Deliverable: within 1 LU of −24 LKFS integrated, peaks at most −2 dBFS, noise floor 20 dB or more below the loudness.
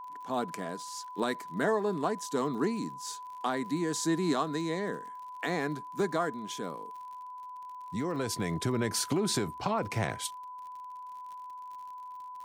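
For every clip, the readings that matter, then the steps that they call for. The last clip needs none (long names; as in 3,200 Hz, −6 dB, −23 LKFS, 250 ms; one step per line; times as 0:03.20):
crackle rate 53 per second; interfering tone 1,000 Hz; level of the tone −41 dBFS; integrated loudness −32.5 LKFS; sample peak −17.0 dBFS; target loudness −24.0 LKFS
→ click removal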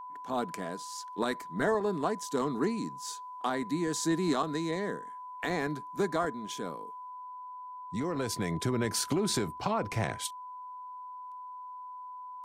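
crackle rate 0.48 per second; interfering tone 1,000 Hz; level of the tone −41 dBFS
→ notch filter 1,000 Hz, Q 30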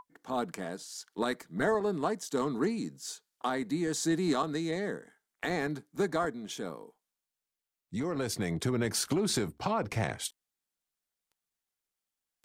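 interfering tone none found; integrated loudness −33.0 LKFS; sample peak −17.5 dBFS; target loudness −24.0 LKFS
→ level +9 dB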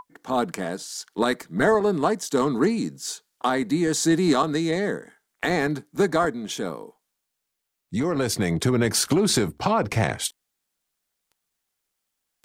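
integrated loudness −24.0 LKFS; sample peak −8.5 dBFS; background noise floor −80 dBFS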